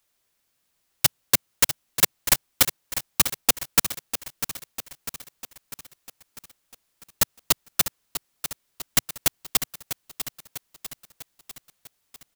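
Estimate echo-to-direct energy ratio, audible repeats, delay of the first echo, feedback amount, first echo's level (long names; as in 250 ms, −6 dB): −9.0 dB, 5, 648 ms, 55%, −10.5 dB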